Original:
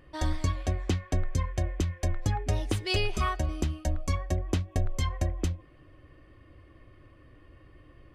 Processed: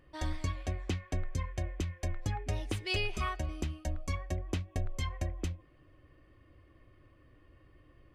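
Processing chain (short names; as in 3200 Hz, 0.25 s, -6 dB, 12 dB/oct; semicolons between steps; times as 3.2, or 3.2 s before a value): dynamic EQ 2400 Hz, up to +5 dB, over -52 dBFS, Q 1.9; gain -6.5 dB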